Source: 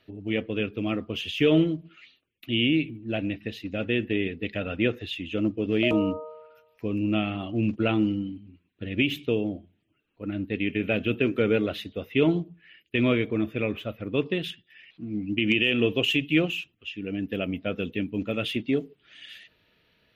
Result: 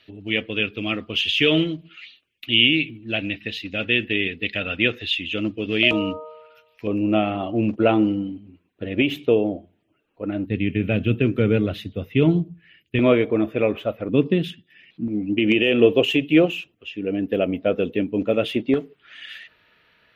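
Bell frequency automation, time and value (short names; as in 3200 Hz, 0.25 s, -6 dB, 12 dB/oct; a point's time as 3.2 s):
bell +11.5 dB 2.1 oct
3200 Hz
from 6.87 s 660 Hz
from 10.46 s 110 Hz
from 12.99 s 670 Hz
from 14.09 s 210 Hz
from 15.08 s 550 Hz
from 18.74 s 1400 Hz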